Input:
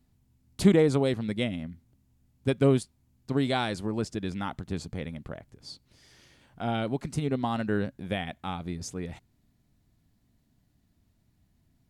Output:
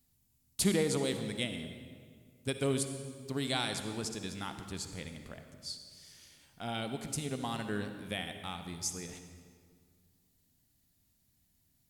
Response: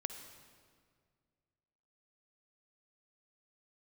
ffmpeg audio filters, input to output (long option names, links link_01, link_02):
-filter_complex "[0:a]crystalizer=i=5.5:c=0[link_01];[1:a]atrim=start_sample=2205[link_02];[link_01][link_02]afir=irnorm=-1:irlink=0,volume=-8.5dB"